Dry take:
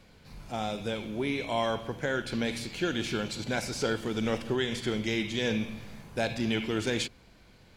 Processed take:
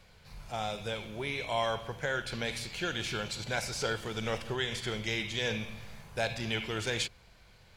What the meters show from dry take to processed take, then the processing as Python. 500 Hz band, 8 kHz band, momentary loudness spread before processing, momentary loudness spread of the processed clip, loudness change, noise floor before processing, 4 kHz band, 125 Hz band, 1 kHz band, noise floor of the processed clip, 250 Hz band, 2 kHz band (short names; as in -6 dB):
-4.0 dB, 0.0 dB, 5 LU, 6 LU, -3.0 dB, -57 dBFS, 0.0 dB, -2.5 dB, -1.0 dB, -59 dBFS, -9.5 dB, 0.0 dB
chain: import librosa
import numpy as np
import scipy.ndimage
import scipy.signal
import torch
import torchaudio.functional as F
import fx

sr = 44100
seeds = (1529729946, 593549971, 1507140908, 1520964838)

y = fx.peak_eq(x, sr, hz=270.0, db=-13.0, octaves=1.0)